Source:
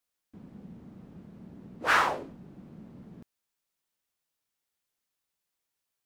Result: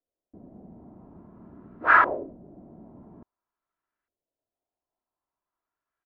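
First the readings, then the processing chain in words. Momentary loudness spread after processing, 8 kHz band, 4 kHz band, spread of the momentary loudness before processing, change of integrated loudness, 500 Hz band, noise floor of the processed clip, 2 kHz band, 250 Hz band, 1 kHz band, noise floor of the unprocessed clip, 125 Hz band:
14 LU, under -25 dB, under -10 dB, 12 LU, +6.0 dB, +4.0 dB, under -85 dBFS, +6.0 dB, +1.5 dB, +6.0 dB, -85 dBFS, -2.5 dB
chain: LFO low-pass saw up 0.49 Hz 500–1600 Hz; comb 3 ms, depth 38%

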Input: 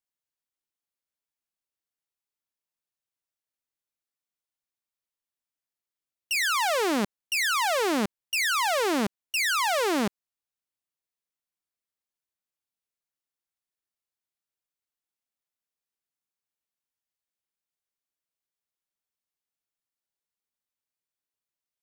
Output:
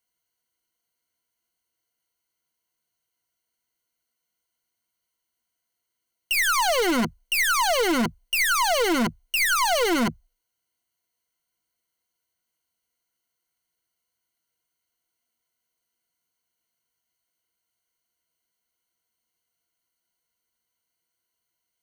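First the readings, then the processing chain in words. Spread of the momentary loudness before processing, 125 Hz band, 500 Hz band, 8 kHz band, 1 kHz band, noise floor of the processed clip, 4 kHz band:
5 LU, +5.0 dB, +3.0 dB, +4.5 dB, +3.0 dB, -82 dBFS, +3.0 dB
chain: rippled EQ curve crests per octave 1.9, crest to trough 13 dB; hard clipper -28 dBFS, distortion -5 dB; trim +8 dB

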